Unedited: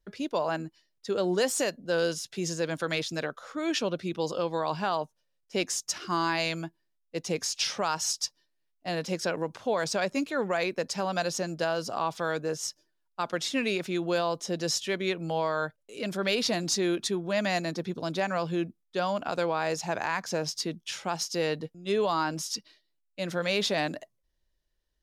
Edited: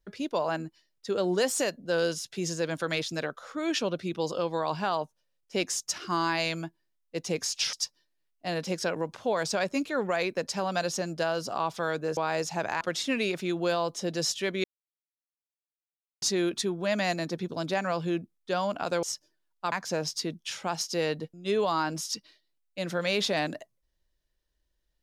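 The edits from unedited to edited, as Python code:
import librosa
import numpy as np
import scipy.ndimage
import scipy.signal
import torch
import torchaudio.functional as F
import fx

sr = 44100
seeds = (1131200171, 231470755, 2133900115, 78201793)

y = fx.edit(x, sr, fx.cut(start_s=7.73, length_s=0.41),
    fx.swap(start_s=12.58, length_s=0.69, other_s=19.49, other_length_s=0.64),
    fx.silence(start_s=15.1, length_s=1.58), tone=tone)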